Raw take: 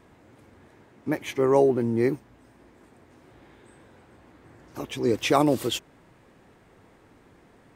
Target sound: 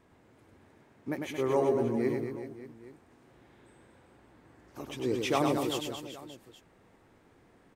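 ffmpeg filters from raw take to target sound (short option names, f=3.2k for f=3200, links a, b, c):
-af "aecho=1:1:100|225|381.2|576.6|820.7:0.631|0.398|0.251|0.158|0.1,volume=-8dB"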